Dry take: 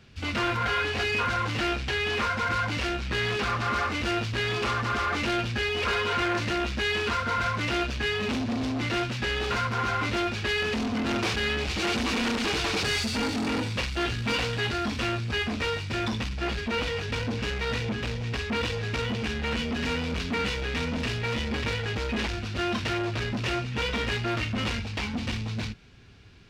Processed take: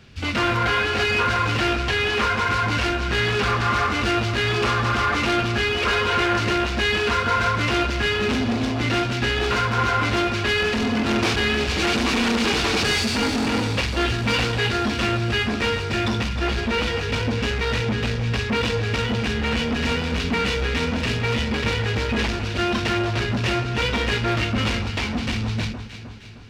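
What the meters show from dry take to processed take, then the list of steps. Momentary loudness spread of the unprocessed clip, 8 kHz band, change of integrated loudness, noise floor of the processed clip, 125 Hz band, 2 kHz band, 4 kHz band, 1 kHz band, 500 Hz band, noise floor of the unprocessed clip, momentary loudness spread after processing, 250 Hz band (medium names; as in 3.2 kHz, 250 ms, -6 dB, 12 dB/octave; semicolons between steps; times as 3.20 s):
4 LU, +6.0 dB, +6.0 dB, -27 dBFS, +7.0 dB, +6.0 dB, +6.0 dB, +6.5 dB, +6.5 dB, -33 dBFS, 4 LU, +6.0 dB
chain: echo whose repeats swap between lows and highs 155 ms, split 1.5 kHz, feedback 72%, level -8 dB; trim +5.5 dB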